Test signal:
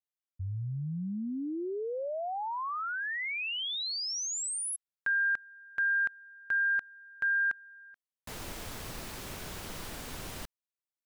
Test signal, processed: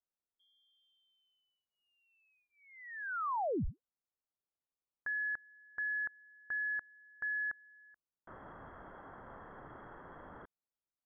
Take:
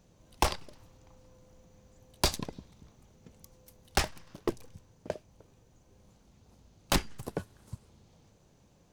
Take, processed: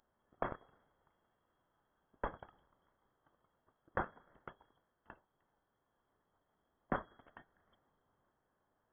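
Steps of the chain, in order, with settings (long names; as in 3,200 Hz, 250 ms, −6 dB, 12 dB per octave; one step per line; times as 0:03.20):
inverse Chebyshev high-pass filter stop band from 980 Hz, stop band 40 dB
voice inversion scrambler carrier 3,300 Hz
level +1 dB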